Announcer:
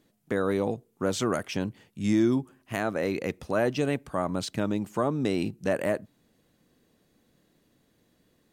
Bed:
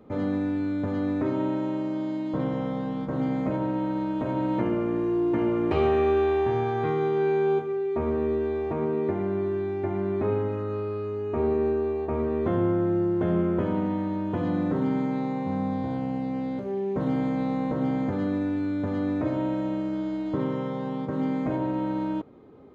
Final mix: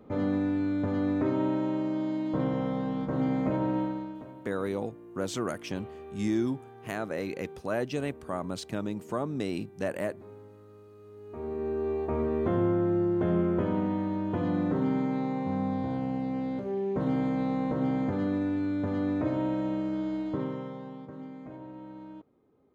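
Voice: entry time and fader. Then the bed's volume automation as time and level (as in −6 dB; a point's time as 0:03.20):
4.15 s, −5.0 dB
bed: 0:03.80 −1 dB
0:04.45 −22.5 dB
0:10.91 −22.5 dB
0:11.93 −2 dB
0:20.19 −2 dB
0:21.31 −16.5 dB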